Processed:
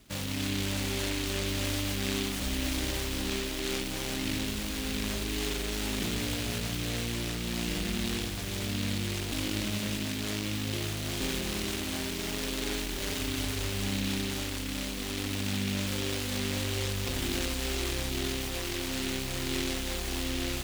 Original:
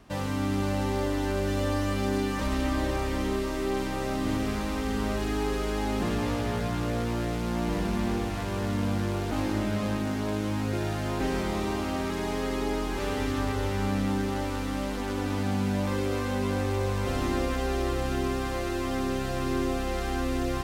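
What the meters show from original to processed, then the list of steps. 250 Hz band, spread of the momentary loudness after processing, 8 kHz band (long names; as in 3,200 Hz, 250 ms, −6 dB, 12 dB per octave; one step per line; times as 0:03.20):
−5.0 dB, 2 LU, +7.5 dB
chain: short delay modulated by noise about 2,900 Hz, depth 0.33 ms
level −4 dB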